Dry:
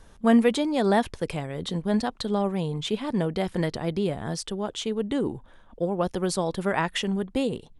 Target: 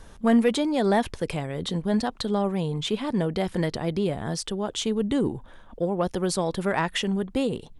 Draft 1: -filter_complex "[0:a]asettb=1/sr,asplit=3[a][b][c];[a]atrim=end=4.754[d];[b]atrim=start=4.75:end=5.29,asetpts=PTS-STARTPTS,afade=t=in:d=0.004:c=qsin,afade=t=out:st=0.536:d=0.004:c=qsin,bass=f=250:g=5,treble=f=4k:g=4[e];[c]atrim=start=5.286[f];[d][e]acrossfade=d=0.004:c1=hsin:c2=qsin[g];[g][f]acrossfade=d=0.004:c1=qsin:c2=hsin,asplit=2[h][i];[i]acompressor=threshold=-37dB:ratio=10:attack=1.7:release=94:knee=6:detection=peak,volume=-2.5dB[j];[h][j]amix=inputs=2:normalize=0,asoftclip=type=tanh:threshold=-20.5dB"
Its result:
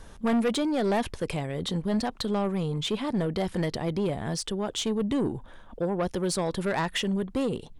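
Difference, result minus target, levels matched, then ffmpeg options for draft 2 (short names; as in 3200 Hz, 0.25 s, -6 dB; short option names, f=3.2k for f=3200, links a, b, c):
soft clip: distortion +12 dB
-filter_complex "[0:a]asettb=1/sr,asplit=3[a][b][c];[a]atrim=end=4.754[d];[b]atrim=start=4.75:end=5.29,asetpts=PTS-STARTPTS,afade=t=in:d=0.004:c=qsin,afade=t=out:st=0.536:d=0.004:c=qsin,bass=f=250:g=5,treble=f=4k:g=4[e];[c]atrim=start=5.286[f];[d][e]acrossfade=d=0.004:c1=hsin:c2=qsin[g];[g][f]acrossfade=d=0.004:c1=qsin:c2=hsin,asplit=2[h][i];[i]acompressor=threshold=-37dB:ratio=10:attack=1.7:release=94:knee=6:detection=peak,volume=-2.5dB[j];[h][j]amix=inputs=2:normalize=0,asoftclip=type=tanh:threshold=-10dB"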